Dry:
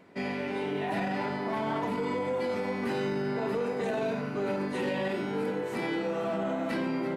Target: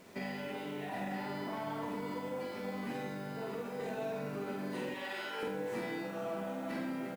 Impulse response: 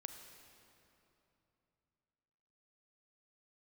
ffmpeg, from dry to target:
-filter_complex "[0:a]asettb=1/sr,asplit=3[a][b][c];[a]atrim=end=4.894[d];[b]atrim=start=4.89:end=5.43,asetpts=PTS-STARTPTS,afade=t=in:d=0.004:c=qsin,afade=t=out:st=0.536:d=0.004:c=qsin,highpass=940[e];[c]atrim=start=5.426[f];[d][e]acrossfade=d=0.004:c1=hsin:c2=qsin[g];[g][f]acrossfade=d=0.004:c1=qsin:c2=hsin,acompressor=threshold=-36dB:ratio=16,acrusher=bits=9:mix=0:aa=0.000001,asplit=2[h][i];[i]adelay=47,volume=-3dB[j];[h][j]amix=inputs=2:normalize=0,asplit=2[k][l];[l]adelay=583.1,volume=-17dB,highshelf=f=4k:g=-13.1[m];[k][m]amix=inputs=2:normalize=0[n];[1:a]atrim=start_sample=2205,afade=t=out:st=0.36:d=0.01,atrim=end_sample=16317,asetrate=66150,aresample=44100[o];[n][o]afir=irnorm=-1:irlink=0,volume=7dB"

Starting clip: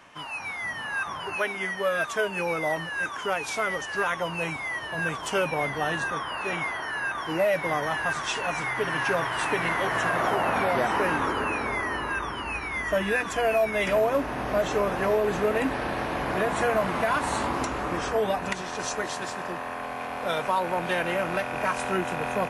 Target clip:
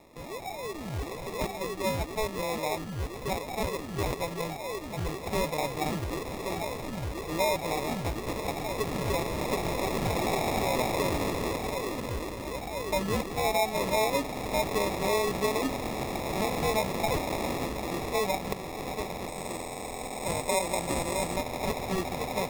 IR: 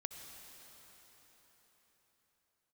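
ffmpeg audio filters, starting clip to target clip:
-filter_complex "[0:a]acrusher=samples=29:mix=1:aa=0.000001,asettb=1/sr,asplit=3[a][b][c];[a]atrim=end=19.284[d];[b]atrim=start=19.28:end=21.36,asetpts=PTS-STARTPTS,afade=t=in:d=0.004:c=qsin,afade=t=out:st=2.076:d=0.004:c=qsin,equalizer=f=8.1k:w=4.7:g=13.5[e];[c]atrim=start=21.356[f];[d][e]acrossfade=d=0.004:c1=hsin:c2=qsin[g];[g][f]acrossfade=d=0.004:c1=qsin:c2=hsin,volume=-3.5dB"

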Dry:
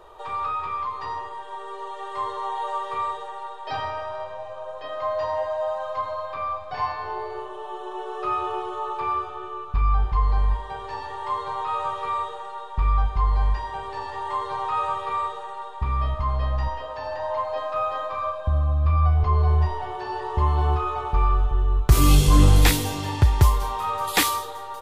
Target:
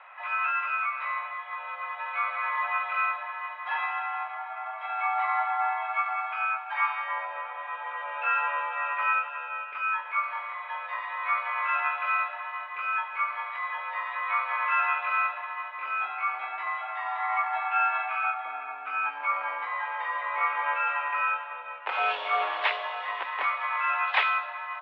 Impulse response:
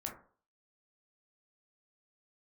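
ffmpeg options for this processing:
-filter_complex "[0:a]asplit=3[a][b][c];[b]asetrate=52444,aresample=44100,atempo=0.840896,volume=-9dB[d];[c]asetrate=88200,aresample=44100,atempo=0.5,volume=-3dB[e];[a][d][e]amix=inputs=3:normalize=0,highpass=f=570:t=q:w=0.5412,highpass=f=570:t=q:w=1.307,lowpass=f=2.9k:t=q:w=0.5176,lowpass=f=2.9k:t=q:w=0.7071,lowpass=f=2.9k:t=q:w=1.932,afreqshift=130,volume=-2dB"

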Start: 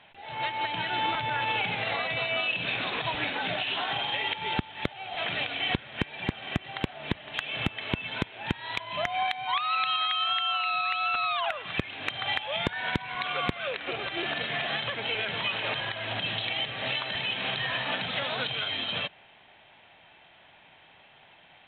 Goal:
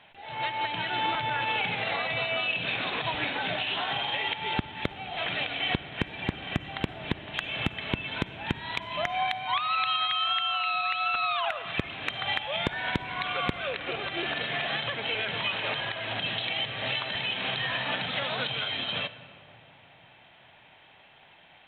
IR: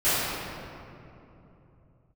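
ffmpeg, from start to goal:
-filter_complex "[0:a]asplit=2[a][b];[1:a]atrim=start_sample=2205,adelay=41[c];[b][c]afir=irnorm=-1:irlink=0,volume=-31dB[d];[a][d]amix=inputs=2:normalize=0"

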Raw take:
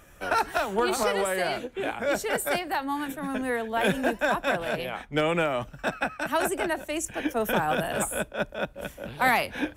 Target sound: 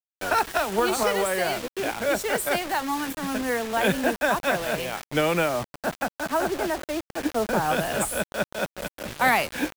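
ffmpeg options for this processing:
-filter_complex "[0:a]asettb=1/sr,asplit=3[a][b][c];[a]atrim=end=5.494[d];[b]atrim=start=5.49:end=7.65,asetpts=PTS-STARTPTS,afade=t=in:d=0.004:c=qsin,afade=t=out:st=2.156:d=0.004:c=qsin,lowpass=1.5k[e];[c]atrim=start=7.646[f];[d][e]acrossfade=d=0.004:c1=hsin:c2=qsin[g];[g][f]acrossfade=d=0.004:c1=qsin:c2=hsin,acrusher=bits=5:mix=0:aa=0.000001,volume=2dB"

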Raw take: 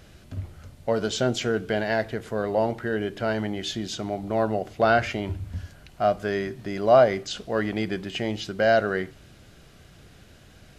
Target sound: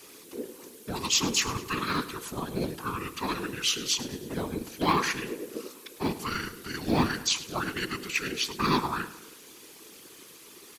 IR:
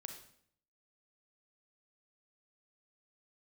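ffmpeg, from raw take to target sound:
-filter_complex "[0:a]aeval=exprs='val(0)*sin(2*PI*62*n/s)':c=same,afreqshift=-450,afftfilt=real='hypot(re,im)*cos(2*PI*random(0))':imag='hypot(re,im)*sin(2*PI*random(1))':win_size=512:overlap=0.75,asplit=2[a][b];[b]aeval=exprs='clip(val(0),-1,0.0299)':c=same,volume=-8dB[c];[a][c]amix=inputs=2:normalize=0,aemphasis=mode=production:type=riaa,asplit=2[d][e];[e]aecho=0:1:105|210|315|420:0.158|0.0761|0.0365|0.0175[f];[d][f]amix=inputs=2:normalize=0,volume=6dB"

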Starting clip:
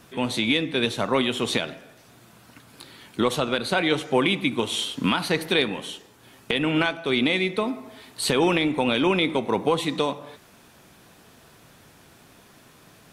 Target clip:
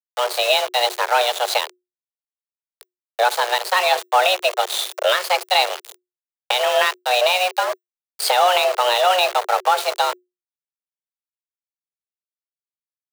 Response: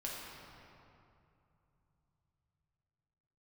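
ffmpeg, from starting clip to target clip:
-af "aeval=exprs='val(0)*gte(abs(val(0)),0.0473)':c=same,aeval=exprs='0.596*(cos(1*acos(clip(val(0)/0.596,-1,1)))-cos(1*PI/2))+0.00531*(cos(8*acos(clip(val(0)/0.596,-1,1)))-cos(8*PI/2))':c=same,afreqshift=360,volume=5dB"

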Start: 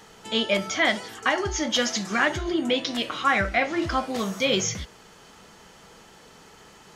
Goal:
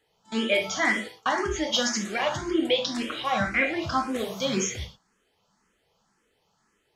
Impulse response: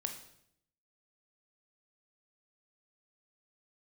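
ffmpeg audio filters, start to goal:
-filter_complex "[0:a]agate=range=-19dB:threshold=-36dB:ratio=16:detection=peak[a];[1:a]atrim=start_sample=2205,afade=t=out:st=0.17:d=0.01,atrim=end_sample=7938[b];[a][b]afir=irnorm=-1:irlink=0,asplit=2[c][d];[d]afreqshift=1.9[e];[c][e]amix=inputs=2:normalize=1,volume=2dB"

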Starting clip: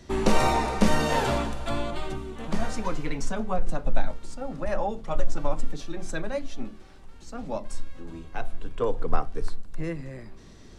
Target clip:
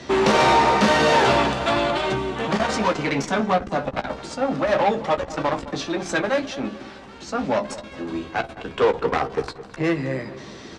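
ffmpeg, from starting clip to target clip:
-filter_complex "[0:a]lowshelf=f=250:g=-9,aeval=exprs='0.316*(cos(1*acos(clip(val(0)/0.316,-1,1)))-cos(1*PI/2))+0.112*(cos(5*acos(clip(val(0)/0.316,-1,1)))-cos(5*PI/2))+0.0178*(cos(8*acos(clip(val(0)/0.316,-1,1)))-cos(8*PI/2))':c=same,asplit=2[a][b];[b]aeval=exprs='0.0631*(abs(mod(val(0)/0.0631+3,4)-2)-1)':c=same,volume=-3.5dB[c];[a][c]amix=inputs=2:normalize=0,highpass=100,lowpass=5k,asplit=2[d][e];[e]adelay=15,volume=-8dB[f];[d][f]amix=inputs=2:normalize=0,asplit=2[g][h];[h]adelay=213,lowpass=f=2k:p=1,volume=-15dB,asplit=2[i][j];[j]adelay=213,lowpass=f=2k:p=1,volume=0.4,asplit=2[k][l];[l]adelay=213,lowpass=f=2k:p=1,volume=0.4,asplit=2[m][n];[n]adelay=213,lowpass=f=2k:p=1,volume=0.4[o];[g][i][k][m][o]amix=inputs=5:normalize=0,volume=2dB"

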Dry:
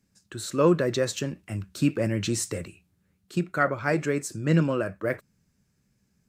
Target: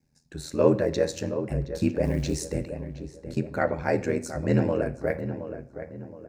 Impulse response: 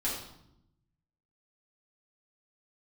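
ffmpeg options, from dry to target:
-filter_complex "[0:a]equalizer=f=100:t=o:w=0.33:g=9,equalizer=f=500:t=o:w=0.33:g=5,equalizer=f=800:t=o:w=0.33:g=8,equalizer=f=1.25k:t=o:w=0.33:g=-11,equalizer=f=3.15k:t=o:w=0.33:g=-10,equalizer=f=8k:t=o:w=0.33:g=-6,equalizer=f=12.5k:t=o:w=0.33:g=-7,aeval=exprs='val(0)*sin(2*PI*41*n/s)':c=same,asettb=1/sr,asplit=3[a][b][c];[a]atrim=end=2.044[d];[b]atrim=start=2.04:end=2.48,asetpts=PTS-STARTPTS,afade=t=in:d=0.004:c=qsin,afade=t=out:st=0.436:d=0.004:c=qsin,acrusher=bits=8:mode=log:mix=0:aa=0.000001[e];[c]atrim=start=2.476[f];[d][e]acrossfade=d=0.004:c1=hsin:c2=qsin[g];[g][f]acrossfade=d=0.004:c1=qsin:c2=hsin,asplit=2[h][i];[i]adelay=720,lowpass=f=1.7k:p=1,volume=-10dB,asplit=2[j][k];[k]adelay=720,lowpass=f=1.7k:p=1,volume=0.41,asplit=2[l][m];[m]adelay=720,lowpass=f=1.7k:p=1,volume=0.41,asplit=2[n][o];[o]adelay=720,lowpass=f=1.7k:p=1,volume=0.41[p];[h][j][l][n][p]amix=inputs=5:normalize=0,asplit=2[q][r];[1:a]atrim=start_sample=2205[s];[r][s]afir=irnorm=-1:irlink=0,volume=-18dB[t];[q][t]amix=inputs=2:normalize=0"

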